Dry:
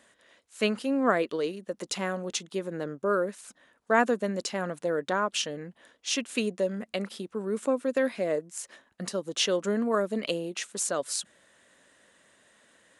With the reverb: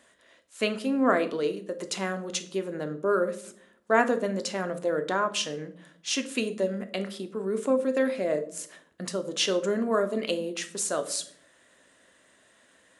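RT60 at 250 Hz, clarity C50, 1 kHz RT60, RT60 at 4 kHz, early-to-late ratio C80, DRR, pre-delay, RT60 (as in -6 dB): 0.90 s, 14.0 dB, 0.55 s, 0.40 s, 18.5 dB, 7.5 dB, 3 ms, 0.65 s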